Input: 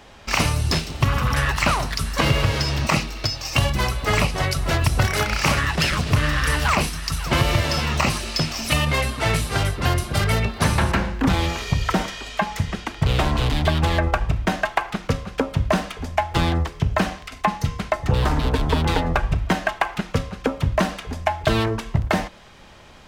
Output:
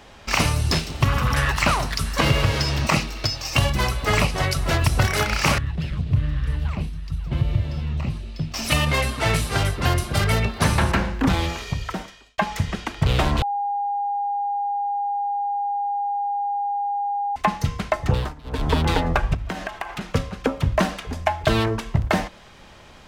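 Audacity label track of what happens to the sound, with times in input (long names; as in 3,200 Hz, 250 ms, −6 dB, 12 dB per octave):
5.580000	8.540000	drawn EQ curve 130 Hz 0 dB, 280 Hz −9 dB, 1,300 Hz −20 dB, 3,700 Hz −16 dB, 5,500 Hz −25 dB
11.210000	12.380000	fade out
13.420000	17.360000	beep over 811 Hz −21.5 dBFS
18.100000	18.680000	duck −22 dB, fades 0.24 s
19.340000	20.010000	downward compressor 5 to 1, threshold −25 dBFS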